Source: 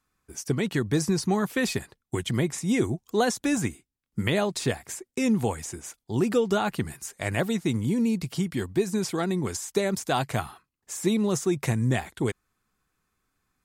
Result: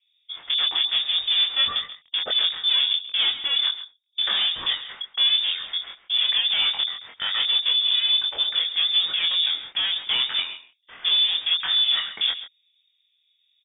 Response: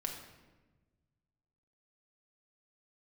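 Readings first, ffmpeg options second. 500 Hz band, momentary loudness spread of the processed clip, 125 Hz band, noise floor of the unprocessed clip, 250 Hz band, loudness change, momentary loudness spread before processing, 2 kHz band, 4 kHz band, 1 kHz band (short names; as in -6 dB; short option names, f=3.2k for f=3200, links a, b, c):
under -20 dB, 10 LU, under -30 dB, -82 dBFS, under -30 dB, +6.5 dB, 10 LU, +3.0 dB, +21.5 dB, -6.0 dB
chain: -filter_complex "[0:a]equalizer=f=100:t=o:w=0.67:g=-8,equalizer=f=250:t=o:w=0.67:g=9,equalizer=f=1k:t=o:w=0.67:g=-4,asplit=2[a][b];[b]acompressor=threshold=-28dB:ratio=6,volume=2.5dB[c];[a][c]amix=inputs=2:normalize=0,asoftclip=type=hard:threshold=-21.5dB,acrossover=split=140|1200[d][e][f];[f]acrusher=bits=6:mix=0:aa=0.000001[g];[d][e][g]amix=inputs=3:normalize=0,asplit=2[h][i];[i]adelay=23,volume=-3dB[j];[h][j]amix=inputs=2:normalize=0,lowpass=f=3.1k:t=q:w=0.5098,lowpass=f=3.1k:t=q:w=0.6013,lowpass=f=3.1k:t=q:w=0.9,lowpass=f=3.1k:t=q:w=2.563,afreqshift=-3700,aecho=1:1:135:0.211"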